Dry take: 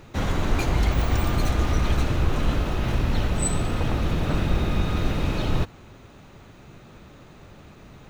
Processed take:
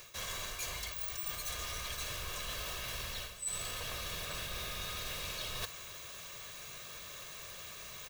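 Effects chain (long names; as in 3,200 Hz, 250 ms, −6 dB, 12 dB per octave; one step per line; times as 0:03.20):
first-order pre-emphasis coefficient 0.97
comb filter 1.8 ms, depth 64%
reversed playback
downward compressor 12 to 1, threshold −51 dBFS, peak gain reduction 26.5 dB
reversed playback
level +14 dB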